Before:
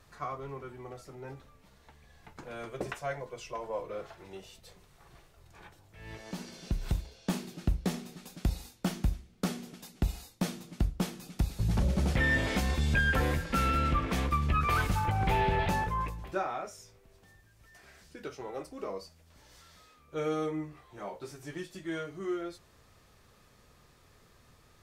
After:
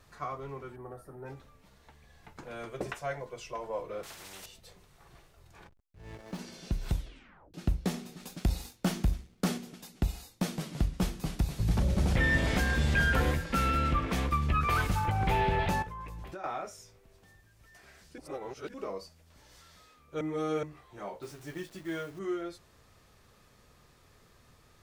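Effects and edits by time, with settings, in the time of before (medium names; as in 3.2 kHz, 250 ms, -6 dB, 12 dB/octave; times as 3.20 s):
0.76–1.26 s: time-frequency box 1.9–8.3 kHz -15 dB
4.03–4.46 s: spectrum-flattening compressor 4:1
5.64–6.39 s: hysteresis with a dead band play -44 dBFS
6.93 s: tape stop 0.61 s
8.20–9.58 s: waveshaping leveller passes 1
10.31–13.31 s: ever faster or slower copies 154 ms, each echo -2 st, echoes 2, each echo -6 dB
15.82–16.44 s: compression 10:1, threshold -38 dBFS
18.18–18.74 s: reverse
20.21–20.63 s: reverse
21.22–22.19 s: send-on-delta sampling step -51.5 dBFS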